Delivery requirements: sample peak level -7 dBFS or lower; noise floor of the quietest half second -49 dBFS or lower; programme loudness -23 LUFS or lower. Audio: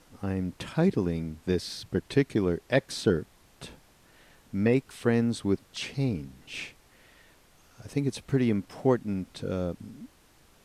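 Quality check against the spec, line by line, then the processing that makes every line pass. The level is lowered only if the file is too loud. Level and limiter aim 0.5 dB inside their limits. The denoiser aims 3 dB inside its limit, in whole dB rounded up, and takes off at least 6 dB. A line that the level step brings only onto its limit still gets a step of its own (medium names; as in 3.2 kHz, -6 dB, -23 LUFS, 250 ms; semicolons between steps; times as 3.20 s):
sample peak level -8.5 dBFS: pass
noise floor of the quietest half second -60 dBFS: pass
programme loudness -29.0 LUFS: pass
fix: none needed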